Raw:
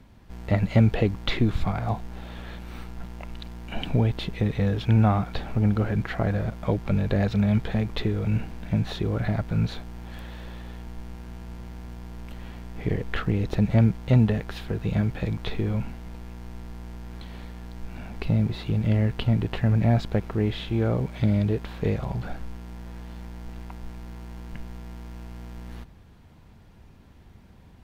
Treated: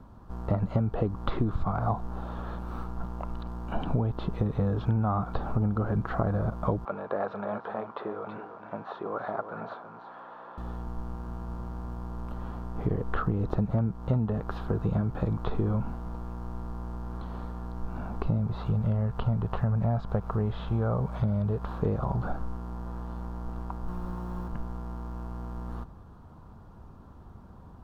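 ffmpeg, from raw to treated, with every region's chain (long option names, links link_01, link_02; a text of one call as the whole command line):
ffmpeg -i in.wav -filter_complex "[0:a]asettb=1/sr,asplit=3[link_01][link_02][link_03];[link_01]atrim=end=6.854[link_04];[link_02]atrim=start=6.85:end=10.58,asetpts=PTS-STARTPTS,afade=type=in:duration=0.004:curve=qsin,afade=type=out:start_time=3.726:duration=0.004:curve=qsin,highpass=580,lowpass=2300,aecho=1:1:326:0.316,atrim=end_sample=164493[link_05];[link_03]atrim=start=10.576[link_06];[link_04][link_05]acrossfade=duration=0.004:curve1=hsin:curve2=qsin[link_07];[link_07][link_06]acrossfade=duration=0.004:curve1=qsin:curve2=hsin,asettb=1/sr,asplit=3[link_08][link_09][link_10];[link_08]atrim=end=18.384[link_11];[link_09]atrim=start=18.38:end=21.68,asetpts=PTS-STARTPTS,afade=type=in:duration=0.004:curve=qsin,afade=type=out:start_time=3.296:duration=0.004:curve=qsin,equalizer=frequency=310:width_type=o:width=0.55:gain=-12,acompressor=mode=upward:threshold=-30dB:ratio=2.5:attack=3.2:release=140:knee=2.83:detection=peak[link_12];[link_10]atrim=start=21.676[link_13];[link_11][link_12]acrossfade=duration=0.004:curve1=hsin:curve2=qsin[link_14];[link_14][link_13]acrossfade=duration=0.004:curve1=qsin:curve2=hsin,asettb=1/sr,asplit=3[link_15][link_16][link_17];[link_15]atrim=end=23.884[link_18];[link_16]atrim=start=23.88:end=24.48,asetpts=PTS-STARTPTS,afade=type=in:duration=0.004:curve=qsin,afade=type=out:start_time=0.596:duration=0.004:curve=qsin,aecho=1:1:5.6:0.97,atrim=end_sample=26460,acrusher=bits=5:mode=log:mix=0:aa=0.000001[link_19];[link_17]atrim=start=24.476[link_20];[link_18][link_19]acrossfade=duration=0.004:curve1=hsin:curve2=qsin[link_21];[link_21][link_20]acrossfade=duration=0.004:curve1=qsin:curve2=hsin,acrossover=split=4200[link_22][link_23];[link_23]acompressor=threshold=-55dB:ratio=4:attack=1:release=60[link_24];[link_22][link_24]amix=inputs=2:normalize=0,highshelf=frequency=1600:width_type=q:width=3:gain=-9.5,acompressor=threshold=-25dB:ratio=6,volume=2dB" out.wav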